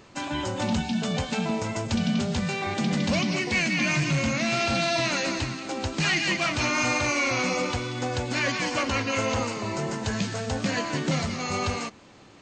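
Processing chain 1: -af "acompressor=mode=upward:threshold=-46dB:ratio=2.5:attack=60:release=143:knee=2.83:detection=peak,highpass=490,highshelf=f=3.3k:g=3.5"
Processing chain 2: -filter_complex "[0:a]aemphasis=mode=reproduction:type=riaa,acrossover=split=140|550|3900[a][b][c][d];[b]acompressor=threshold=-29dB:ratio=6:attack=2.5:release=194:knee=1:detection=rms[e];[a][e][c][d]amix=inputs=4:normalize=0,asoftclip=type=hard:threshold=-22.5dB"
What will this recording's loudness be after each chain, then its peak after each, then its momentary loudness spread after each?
-26.5, -27.0 LUFS; -10.5, -22.5 dBFS; 9, 2 LU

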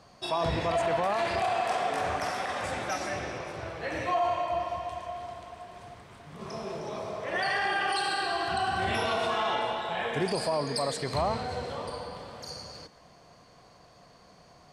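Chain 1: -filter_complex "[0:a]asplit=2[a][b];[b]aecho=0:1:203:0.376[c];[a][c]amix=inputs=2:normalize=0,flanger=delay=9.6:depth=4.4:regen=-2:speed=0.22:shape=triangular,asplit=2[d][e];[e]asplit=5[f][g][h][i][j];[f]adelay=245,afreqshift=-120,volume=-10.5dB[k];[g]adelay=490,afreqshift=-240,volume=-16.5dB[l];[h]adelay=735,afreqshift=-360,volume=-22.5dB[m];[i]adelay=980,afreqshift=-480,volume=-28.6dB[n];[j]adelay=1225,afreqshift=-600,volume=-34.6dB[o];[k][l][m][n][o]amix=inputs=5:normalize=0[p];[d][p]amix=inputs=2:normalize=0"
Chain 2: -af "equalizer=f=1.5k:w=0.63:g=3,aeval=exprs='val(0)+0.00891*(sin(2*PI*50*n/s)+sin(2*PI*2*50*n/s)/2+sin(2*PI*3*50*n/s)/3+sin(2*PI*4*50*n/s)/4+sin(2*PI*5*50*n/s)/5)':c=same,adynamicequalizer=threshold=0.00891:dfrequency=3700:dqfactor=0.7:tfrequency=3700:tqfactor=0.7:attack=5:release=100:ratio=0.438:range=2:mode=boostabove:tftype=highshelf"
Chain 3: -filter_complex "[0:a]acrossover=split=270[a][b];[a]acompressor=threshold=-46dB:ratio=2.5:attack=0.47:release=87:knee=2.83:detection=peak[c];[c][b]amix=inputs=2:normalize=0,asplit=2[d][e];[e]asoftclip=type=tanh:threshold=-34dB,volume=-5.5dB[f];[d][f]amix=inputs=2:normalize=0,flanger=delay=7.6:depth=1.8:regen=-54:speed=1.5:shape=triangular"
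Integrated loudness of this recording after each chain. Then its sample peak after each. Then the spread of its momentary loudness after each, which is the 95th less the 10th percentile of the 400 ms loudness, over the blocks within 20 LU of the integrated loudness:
-32.5, -28.5, -33.0 LUFS; -17.5, -15.0, -20.0 dBFS; 14, 19, 13 LU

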